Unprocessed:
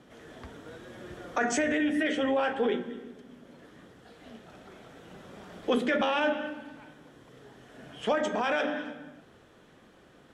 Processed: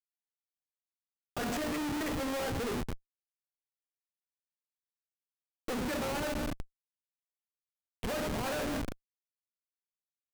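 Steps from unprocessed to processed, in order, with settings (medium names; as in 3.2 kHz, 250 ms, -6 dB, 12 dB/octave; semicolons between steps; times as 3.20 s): gain riding 0.5 s; Schmitt trigger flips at -31.5 dBFS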